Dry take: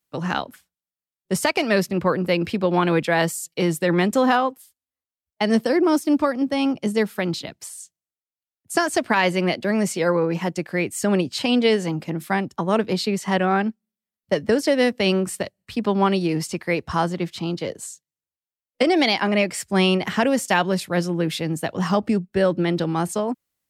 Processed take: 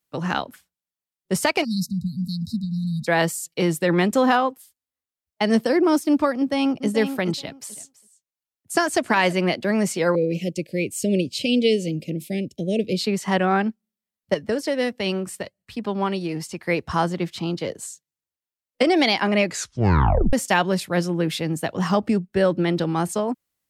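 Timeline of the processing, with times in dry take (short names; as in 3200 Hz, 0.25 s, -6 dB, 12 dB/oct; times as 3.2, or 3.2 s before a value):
1.64–3.07 spectral delete 250–3700 Hz
6.37–6.88 echo throw 0.43 s, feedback 15%, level -8.5 dB
7.39–9.42 echo 0.328 s -19 dB
10.15–13.01 elliptic band-stop 560–2400 Hz, stop band 50 dB
14.34–16.63 flange 1.4 Hz, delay 0.9 ms, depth 1.3 ms, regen +81%
19.45 tape stop 0.88 s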